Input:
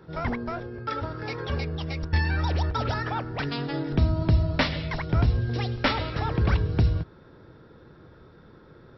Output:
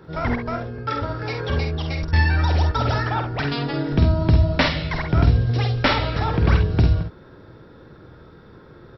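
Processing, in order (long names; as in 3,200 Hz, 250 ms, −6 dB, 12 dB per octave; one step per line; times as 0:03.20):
ambience of single reflections 49 ms −6.5 dB, 66 ms −10.5 dB
level +4.5 dB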